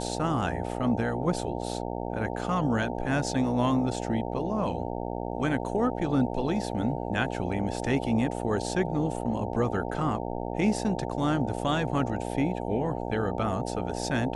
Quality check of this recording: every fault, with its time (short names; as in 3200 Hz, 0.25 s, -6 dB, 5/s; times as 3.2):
buzz 60 Hz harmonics 15 -33 dBFS